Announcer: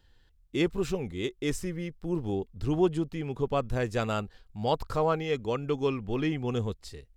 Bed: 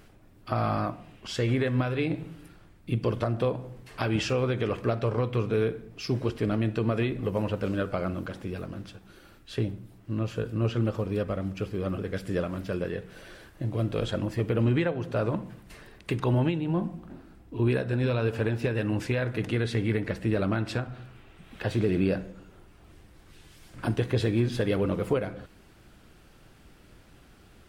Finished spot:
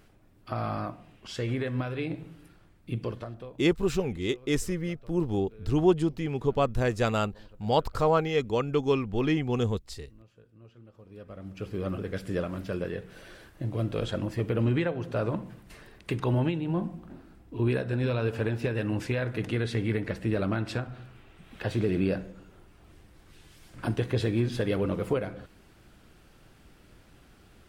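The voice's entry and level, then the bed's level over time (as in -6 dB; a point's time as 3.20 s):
3.05 s, +3.0 dB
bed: 3.01 s -4.5 dB
3.82 s -26.5 dB
10.87 s -26.5 dB
11.74 s -1.5 dB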